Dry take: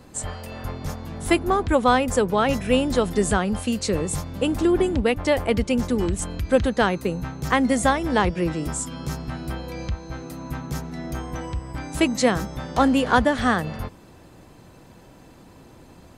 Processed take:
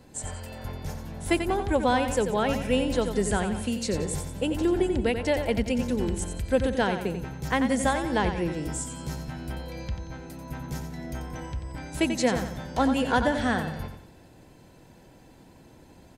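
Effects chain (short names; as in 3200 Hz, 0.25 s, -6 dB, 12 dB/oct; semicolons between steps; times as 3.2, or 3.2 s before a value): notch 1200 Hz, Q 5; feedback echo 90 ms, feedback 41%, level -8 dB; gain -5 dB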